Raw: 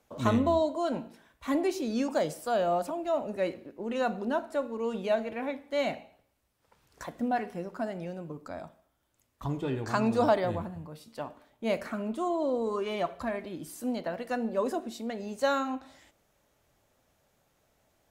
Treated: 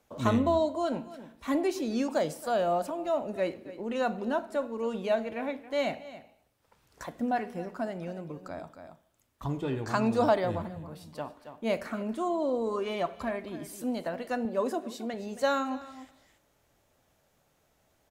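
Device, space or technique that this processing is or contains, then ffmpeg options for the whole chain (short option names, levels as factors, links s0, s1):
ducked delay: -filter_complex "[0:a]asplit=3[s0][s1][s2];[s1]adelay=274,volume=0.447[s3];[s2]apad=whole_len=810560[s4];[s3][s4]sidechaincompress=threshold=0.00794:ratio=8:attack=45:release=490[s5];[s0][s5]amix=inputs=2:normalize=0,asettb=1/sr,asplit=3[s6][s7][s8];[s6]atrim=end=14.454[s9];[s7]atrim=start=14.45:end=15.14,asetpts=PTS-STARTPTS,afade=t=in:d=0.004:c=qsin,afade=t=out:st=0.686:d=0.004:c=qsin,highpass=98[s10];[s8]atrim=start=15.136[s11];[s9][s10]acrossfade=d=0.004:c1=hsin:c2=qsin[s12];[s12][s11]acrossfade=d=0.004:c1=qsin:c2=hsin"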